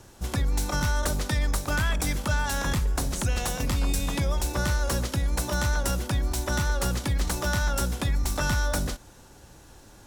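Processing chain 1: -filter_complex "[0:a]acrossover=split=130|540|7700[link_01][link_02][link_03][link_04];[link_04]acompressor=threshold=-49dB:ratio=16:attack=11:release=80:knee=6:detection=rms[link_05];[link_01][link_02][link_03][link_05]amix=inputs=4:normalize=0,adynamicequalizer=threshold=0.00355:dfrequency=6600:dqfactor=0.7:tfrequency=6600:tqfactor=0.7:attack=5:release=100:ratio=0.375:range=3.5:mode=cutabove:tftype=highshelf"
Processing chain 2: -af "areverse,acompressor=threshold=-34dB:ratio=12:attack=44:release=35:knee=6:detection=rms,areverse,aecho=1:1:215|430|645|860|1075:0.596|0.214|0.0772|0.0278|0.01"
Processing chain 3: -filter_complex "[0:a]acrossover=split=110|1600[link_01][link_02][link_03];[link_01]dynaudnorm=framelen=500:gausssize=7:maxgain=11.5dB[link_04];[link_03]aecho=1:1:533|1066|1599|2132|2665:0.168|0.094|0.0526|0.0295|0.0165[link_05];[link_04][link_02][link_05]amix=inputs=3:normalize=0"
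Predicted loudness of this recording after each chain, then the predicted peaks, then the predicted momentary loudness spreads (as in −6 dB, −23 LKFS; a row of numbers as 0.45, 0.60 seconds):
−28.0, −33.5, −20.5 LKFS; −14.5, −19.5, −7.0 dBFS; 2, 4, 7 LU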